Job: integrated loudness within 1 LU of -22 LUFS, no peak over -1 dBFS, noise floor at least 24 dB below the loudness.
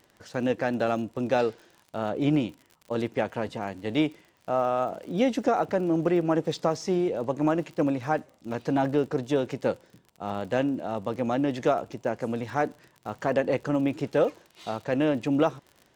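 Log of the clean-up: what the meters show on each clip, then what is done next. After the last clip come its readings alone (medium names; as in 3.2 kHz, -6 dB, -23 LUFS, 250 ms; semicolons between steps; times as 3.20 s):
tick rate 43 per s; loudness -27.5 LUFS; peak level -10.5 dBFS; loudness target -22.0 LUFS
-> de-click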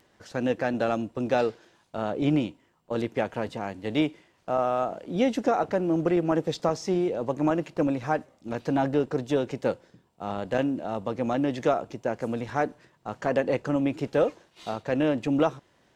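tick rate 0.063 per s; loudness -27.5 LUFS; peak level -10.5 dBFS; loudness target -22.0 LUFS
-> trim +5.5 dB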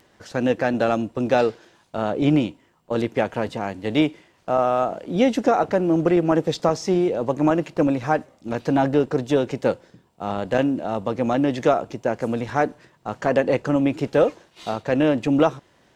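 loudness -22.0 LUFS; peak level -5.0 dBFS; noise floor -59 dBFS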